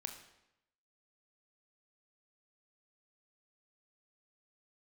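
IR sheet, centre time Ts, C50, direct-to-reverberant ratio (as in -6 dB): 19 ms, 8.0 dB, 5.0 dB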